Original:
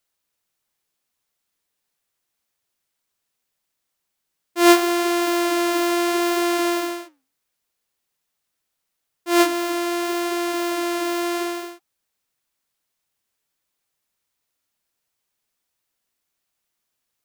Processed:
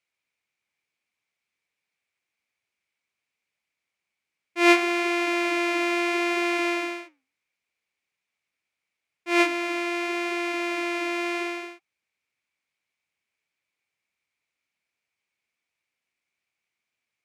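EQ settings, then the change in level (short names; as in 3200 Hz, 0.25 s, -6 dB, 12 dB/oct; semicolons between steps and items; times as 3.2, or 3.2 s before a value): HPF 67 Hz; air absorption 57 m; bell 2300 Hz +15 dB 0.4 oct; -5.5 dB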